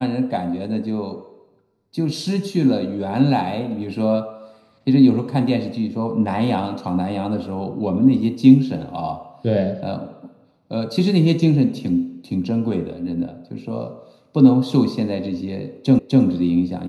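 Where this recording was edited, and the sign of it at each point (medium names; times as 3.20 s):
15.99 s: repeat of the last 0.25 s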